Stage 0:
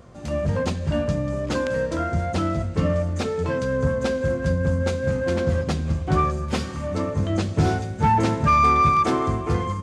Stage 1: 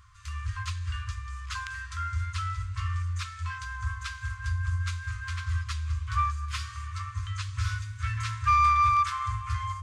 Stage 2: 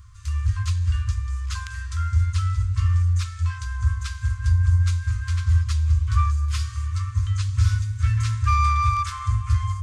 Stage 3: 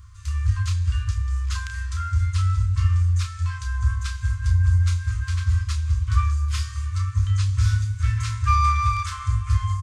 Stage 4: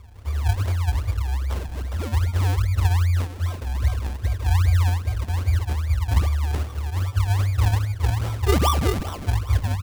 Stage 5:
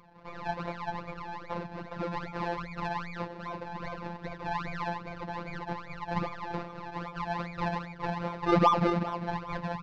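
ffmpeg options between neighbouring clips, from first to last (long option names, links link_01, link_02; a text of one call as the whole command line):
ffmpeg -i in.wav -af "afftfilt=real='re*(1-between(b*sr/4096,110,1000))':imag='im*(1-between(b*sr/4096,110,1000))':win_size=4096:overlap=0.75,bandreject=frequency=50:width_type=h:width=6,bandreject=frequency=100:width_type=h:width=6,volume=-4dB" out.wav
ffmpeg -i in.wav -af "bass=frequency=250:gain=13,treble=frequency=4000:gain=8,volume=-1.5dB" out.wav
ffmpeg -i in.wav -filter_complex "[0:a]asplit=2[link_01][link_02];[link_02]adelay=31,volume=-7dB[link_03];[link_01][link_03]amix=inputs=2:normalize=0" out.wav
ffmpeg -i in.wav -af "acrusher=samples=37:mix=1:aa=0.000001:lfo=1:lforange=37:lforate=2.5" out.wav
ffmpeg -i in.wav -af "highpass=130,equalizer=frequency=200:width_type=q:width=4:gain=8,equalizer=frequency=550:width_type=q:width=4:gain=6,equalizer=frequency=940:width_type=q:width=4:gain=8,equalizer=frequency=3200:width_type=q:width=4:gain=-9,lowpass=frequency=4000:width=0.5412,lowpass=frequency=4000:width=1.3066,afftfilt=real='hypot(re,im)*cos(PI*b)':imag='0':win_size=1024:overlap=0.75" out.wav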